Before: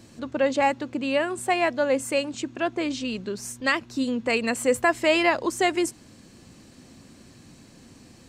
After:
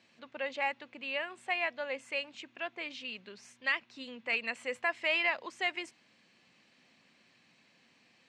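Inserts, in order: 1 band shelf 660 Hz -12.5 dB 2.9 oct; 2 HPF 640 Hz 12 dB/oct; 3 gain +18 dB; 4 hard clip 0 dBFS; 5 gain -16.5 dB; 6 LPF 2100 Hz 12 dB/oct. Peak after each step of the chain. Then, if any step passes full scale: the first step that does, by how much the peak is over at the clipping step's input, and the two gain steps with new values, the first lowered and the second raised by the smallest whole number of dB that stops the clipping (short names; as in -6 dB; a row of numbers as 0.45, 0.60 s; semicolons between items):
-13.5, -13.0, +5.0, 0.0, -16.5, -18.0 dBFS; step 3, 5.0 dB; step 3 +13 dB, step 5 -11.5 dB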